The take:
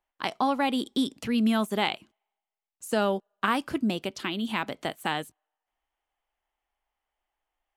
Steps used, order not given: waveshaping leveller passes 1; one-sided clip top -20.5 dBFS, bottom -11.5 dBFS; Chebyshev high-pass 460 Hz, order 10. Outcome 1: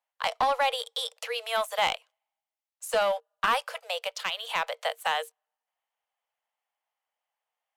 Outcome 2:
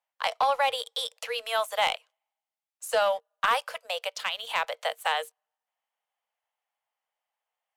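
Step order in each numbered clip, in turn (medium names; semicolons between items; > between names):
waveshaping leveller > Chebyshev high-pass > one-sided clip; Chebyshev high-pass > one-sided clip > waveshaping leveller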